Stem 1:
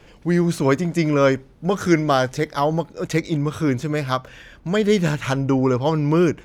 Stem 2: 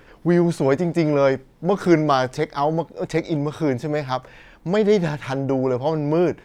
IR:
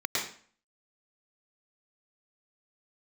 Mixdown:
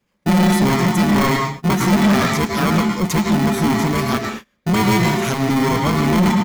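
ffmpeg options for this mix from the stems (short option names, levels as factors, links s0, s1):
-filter_complex "[0:a]aemphasis=mode=production:type=75fm,acompressor=threshold=0.1:ratio=6,volume=0.944,asplit=2[s0][s1];[s1]volume=0.0891[s2];[1:a]bandreject=f=60:t=h:w=6,bandreject=f=120:t=h:w=6,bandreject=f=180:t=h:w=6,bandreject=f=240:t=h:w=6,bandreject=f=300:t=h:w=6,bandreject=f=360:t=h:w=6,aeval=exprs='val(0)*sgn(sin(2*PI*540*n/s))':c=same,adelay=7.8,volume=0.631,asplit=2[s3][s4];[s4]volume=0.531[s5];[2:a]atrim=start_sample=2205[s6];[s2][s5]amix=inputs=2:normalize=0[s7];[s7][s6]afir=irnorm=-1:irlink=0[s8];[s0][s3][s8]amix=inputs=3:normalize=0,agate=range=0.0398:threshold=0.0282:ratio=16:detection=peak,equalizer=f=200:t=o:w=0.84:g=14.5,asoftclip=type=tanh:threshold=0.299"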